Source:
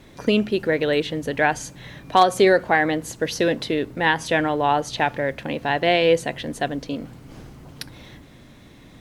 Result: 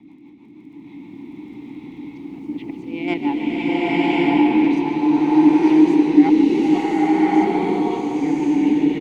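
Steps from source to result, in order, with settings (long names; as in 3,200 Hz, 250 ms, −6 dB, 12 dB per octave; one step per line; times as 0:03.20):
played backwards from end to start
parametric band 200 Hz +5.5 dB 1.2 octaves
volume swells 253 ms
in parallel at +1.5 dB: output level in coarse steps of 17 dB
on the sum: formant filter u
harmonic generator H 5 −25 dB, 8 −43 dB, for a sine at −14 dBFS
rotating-speaker cabinet horn 6.3 Hz, later 0.75 Hz, at 0:04.42
surface crackle 24 per second −57 dBFS
on a send: echo with shifted repeats 143 ms, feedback 54%, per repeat +34 Hz, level −12 dB
on the sum: slow-attack reverb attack 1,110 ms, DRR −9.5 dB
level +4 dB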